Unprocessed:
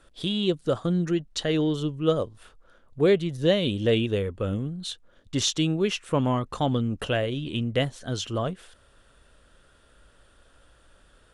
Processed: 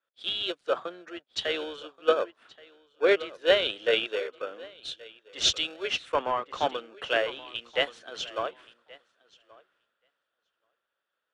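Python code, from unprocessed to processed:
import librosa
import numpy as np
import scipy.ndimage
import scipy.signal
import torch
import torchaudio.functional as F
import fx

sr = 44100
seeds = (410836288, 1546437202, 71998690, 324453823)

p1 = scipy.signal.sosfilt(scipy.signal.butter(4, 440.0, 'highpass', fs=sr, output='sos'), x)
p2 = fx.sample_hold(p1, sr, seeds[0], rate_hz=1000.0, jitter_pct=0)
p3 = p1 + (p2 * librosa.db_to_amplitude(-10.0))
p4 = scipy.signal.sosfilt(scipy.signal.butter(2, 2700.0, 'lowpass', fs=sr, output='sos'), p3)
p5 = fx.tilt_eq(p4, sr, slope=3.0)
p6 = p5 + fx.echo_feedback(p5, sr, ms=1128, feedback_pct=19, wet_db=-14.0, dry=0)
y = fx.band_widen(p6, sr, depth_pct=70)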